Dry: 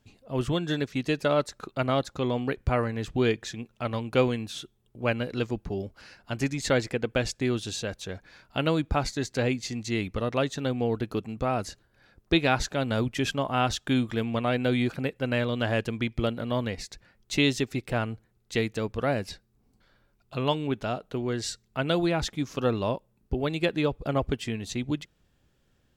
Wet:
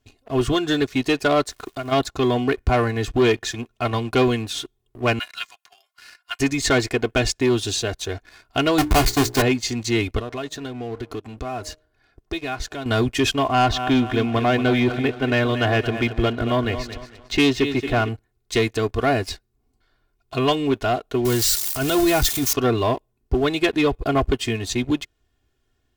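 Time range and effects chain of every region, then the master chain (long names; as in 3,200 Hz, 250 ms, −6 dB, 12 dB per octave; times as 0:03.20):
0:01.47–0:01.91: downward compressor 5 to 1, threshold −35 dBFS + surface crackle 460 per second −49 dBFS
0:05.19–0:06.40: Bessel high-pass filter 1,600 Hz, order 6 + comb filter 2.9 ms, depth 49%
0:08.78–0:09.42: each half-wave held at its own peak + mains-hum notches 60/120/180/240/300/360/420/480/540 Hz
0:10.19–0:12.86: high-shelf EQ 9,200 Hz −5.5 dB + hum removal 154.5 Hz, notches 4 + downward compressor 3 to 1, threshold −38 dBFS
0:13.44–0:18.09: low-pass filter 3,600 Hz + repeating echo 226 ms, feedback 42%, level −12 dB
0:21.25–0:22.53: spike at every zero crossing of −22 dBFS + low-shelf EQ 110 Hz +10 dB + transient designer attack −12 dB, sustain −3 dB
whole clip: parametric band 320 Hz −4 dB 0.21 octaves; comb filter 2.8 ms, depth 82%; leveller curve on the samples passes 2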